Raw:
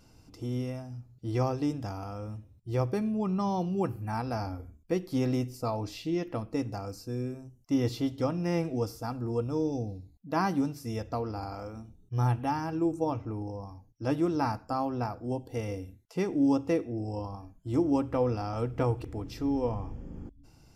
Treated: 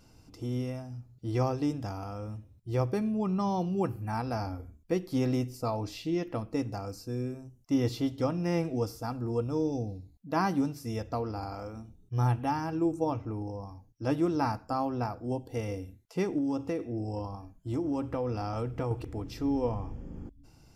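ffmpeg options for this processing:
ffmpeg -i in.wav -filter_complex "[0:a]asettb=1/sr,asplit=3[link_01][link_02][link_03];[link_01]atrim=end=16.384[link_04];[link_02]atrim=start=16.38:end=18.91,asetpts=PTS-STARTPTS,afade=type=in:duration=0.004:curve=qsin,afade=type=out:start_time=2.526:duration=0.004:curve=qsin,acompressor=threshold=-27dB:ratio=6:attack=3.2:release=140:knee=1:detection=peak[link_05];[link_03]atrim=start=18.906[link_06];[link_04][link_05]acrossfade=duration=0.004:curve1=hsin:curve2=qsin[link_07];[link_07][link_06]acrossfade=duration=0.004:curve1=qsin:curve2=hsin" out.wav

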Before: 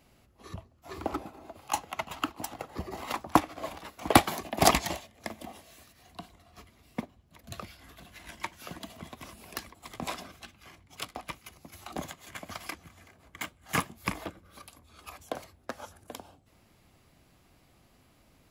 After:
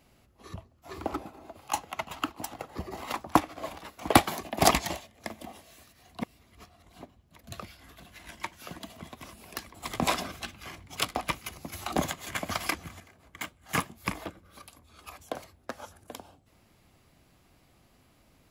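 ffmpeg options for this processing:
ffmpeg -i in.wav -filter_complex "[0:a]asplit=5[link_01][link_02][link_03][link_04][link_05];[link_01]atrim=end=6.212[link_06];[link_02]atrim=start=6.208:end=7.012,asetpts=PTS-STARTPTS,areverse[link_07];[link_03]atrim=start=7.008:end=9.742[link_08];[link_04]atrim=start=9.738:end=13.002,asetpts=PTS-STARTPTS,volume=9dB[link_09];[link_05]atrim=start=12.998[link_10];[link_06][link_07]acrossfade=duration=0.004:curve1=hsin:curve2=hsin[link_11];[link_11][link_08]acrossfade=duration=0.004:curve1=hsin:curve2=hsin[link_12];[link_12][link_09]acrossfade=duration=0.004:curve1=hsin:curve2=hsin[link_13];[link_13][link_10]acrossfade=duration=0.004:curve1=hsin:curve2=hsin" out.wav

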